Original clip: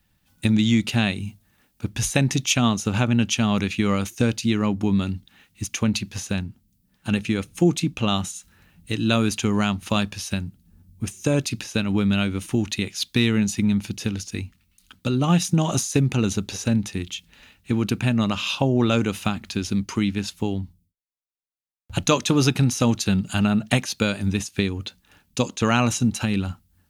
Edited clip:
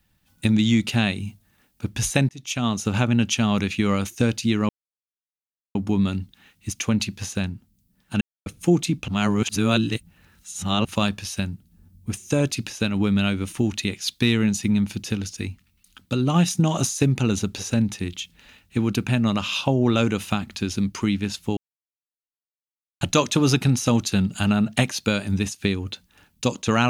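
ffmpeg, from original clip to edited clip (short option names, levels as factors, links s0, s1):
-filter_complex "[0:a]asplit=9[s0][s1][s2][s3][s4][s5][s6][s7][s8];[s0]atrim=end=2.29,asetpts=PTS-STARTPTS,afade=t=out:st=2.286:d=0.004:c=hsin[s9];[s1]atrim=start=2.29:end=4.69,asetpts=PTS-STARTPTS,afade=t=in:d=0.56,afade=t=out:st=2.396:d=0.004:c=hsin,apad=pad_dur=1.06[s10];[s2]atrim=start=4.69:end=7.15,asetpts=PTS-STARTPTS,afade=t=in:d=0.004:c=hsin,afade=t=out:st=2.456:d=0.004:c=hsin[s11];[s3]atrim=start=7.15:end=7.4,asetpts=PTS-STARTPTS,volume=0[s12];[s4]atrim=start=7.4:end=8.022,asetpts=PTS-STARTPTS,afade=t=in:d=0.004:c=hsin[s13];[s5]atrim=start=8.018:end=9.792,asetpts=PTS-STARTPTS,areverse[s14];[s6]atrim=start=9.788:end=20.51,asetpts=PTS-STARTPTS,afade=t=out:st=10.718:d=0.004:c=hsin[s15];[s7]atrim=start=20.51:end=21.95,asetpts=PTS-STARTPTS,volume=0[s16];[s8]atrim=start=21.95,asetpts=PTS-STARTPTS,afade=t=in:d=0.004:c=hsin[s17];[s9][s10][s11][s12][s13]concat=n=5:v=0:a=1[s18];[s18][s14]acrossfade=d=0.004:c1=hsin:c2=hsin[s19];[s15][s16][s17]concat=n=3:v=0:a=1[s20];[s19][s20]acrossfade=d=0.004:c1=hsin:c2=hsin"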